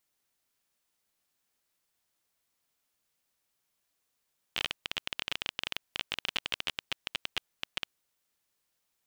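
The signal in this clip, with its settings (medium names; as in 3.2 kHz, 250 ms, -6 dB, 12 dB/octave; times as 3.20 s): random clicks 19 per s -13.5 dBFS 3.38 s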